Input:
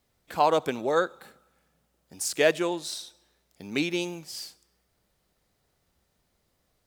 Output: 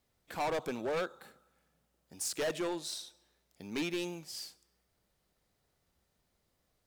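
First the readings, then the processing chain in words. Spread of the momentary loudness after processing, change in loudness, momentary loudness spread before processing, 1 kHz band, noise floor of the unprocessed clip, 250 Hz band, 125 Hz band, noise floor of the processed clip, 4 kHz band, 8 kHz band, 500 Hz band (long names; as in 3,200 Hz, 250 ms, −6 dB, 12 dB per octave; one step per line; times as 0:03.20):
13 LU, −9.5 dB, 15 LU, −12.0 dB, −74 dBFS, −7.5 dB, −7.5 dB, −78 dBFS, −7.0 dB, −6.0 dB, −10.0 dB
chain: gain into a clipping stage and back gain 25.5 dB
level −5 dB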